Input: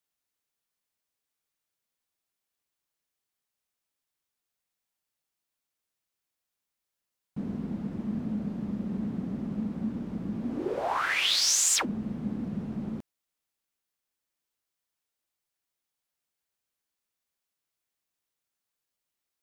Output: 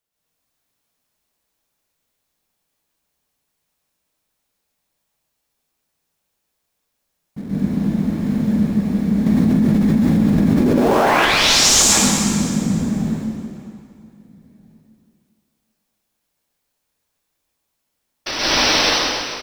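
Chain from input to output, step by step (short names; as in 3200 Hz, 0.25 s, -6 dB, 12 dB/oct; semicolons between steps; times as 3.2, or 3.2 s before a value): outdoor echo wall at 280 m, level -28 dB; 18.26–18.8 painted sound noise 240–6100 Hz -27 dBFS; in parallel at -11 dB: sample-rate reducer 2000 Hz, jitter 20%; on the sum: plate-style reverb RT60 2.1 s, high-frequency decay 0.95×, pre-delay 0.115 s, DRR -9 dB; 9.26–11.25 fast leveller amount 100%; gain +2 dB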